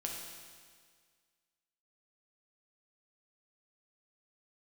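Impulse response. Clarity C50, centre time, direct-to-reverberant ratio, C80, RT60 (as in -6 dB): 2.0 dB, 74 ms, -1.0 dB, 3.5 dB, 1.8 s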